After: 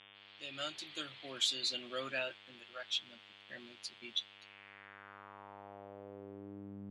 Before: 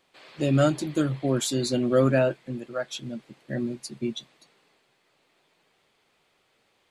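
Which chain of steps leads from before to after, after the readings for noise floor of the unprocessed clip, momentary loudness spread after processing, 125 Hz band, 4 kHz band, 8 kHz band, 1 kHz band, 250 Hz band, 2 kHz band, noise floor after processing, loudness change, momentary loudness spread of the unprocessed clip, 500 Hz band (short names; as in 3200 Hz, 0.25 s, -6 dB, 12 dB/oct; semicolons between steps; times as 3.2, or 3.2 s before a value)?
-69 dBFS, 20 LU, -29.0 dB, +0.5 dB, -11.0 dB, -13.0 dB, -24.5 dB, -7.0 dB, -59 dBFS, -13.5 dB, 14 LU, -21.0 dB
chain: opening faded in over 0.97 s; buzz 100 Hz, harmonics 36, -42 dBFS -6 dB/oct; band-pass sweep 3300 Hz -> 220 Hz, 4.3–6.84; gain +2.5 dB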